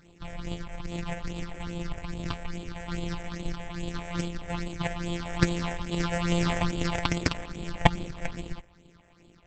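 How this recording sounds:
a buzz of ramps at a fixed pitch in blocks of 256 samples
phaser sweep stages 6, 2.4 Hz, lowest notch 290–1,600 Hz
Opus

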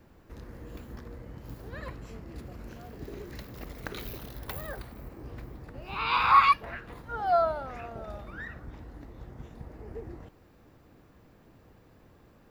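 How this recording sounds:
background noise floor −58 dBFS
spectral slope −2.5 dB per octave

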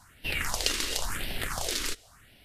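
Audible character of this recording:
phaser sweep stages 4, 0.95 Hz, lowest notch 120–1,200 Hz
Ogg Vorbis

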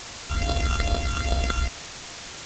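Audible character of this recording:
a buzz of ramps at a fixed pitch in blocks of 64 samples
phaser sweep stages 8, 2.4 Hz, lowest notch 590–2,100 Hz
a quantiser's noise floor 6 bits, dither triangular
G.722

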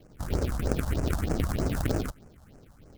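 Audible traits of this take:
aliases and images of a low sample rate 1,000 Hz, jitter 20%
phaser sweep stages 4, 3.2 Hz, lowest notch 370–3,600 Hz

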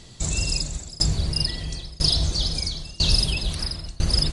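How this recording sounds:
tremolo saw down 1 Hz, depth 95%
MP3

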